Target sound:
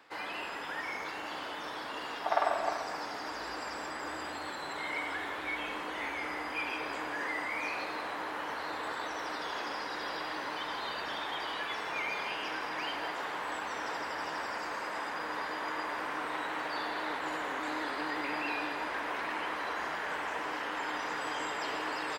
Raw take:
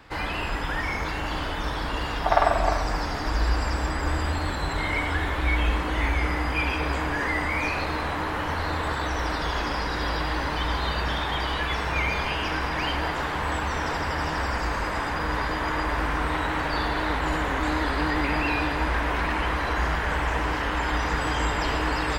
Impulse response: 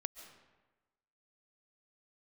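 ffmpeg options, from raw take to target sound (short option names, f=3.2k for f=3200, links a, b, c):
-af "highpass=340,areverse,acompressor=mode=upward:threshold=-32dB:ratio=2.5,areverse,aecho=1:1:163:0.251,volume=-8.5dB"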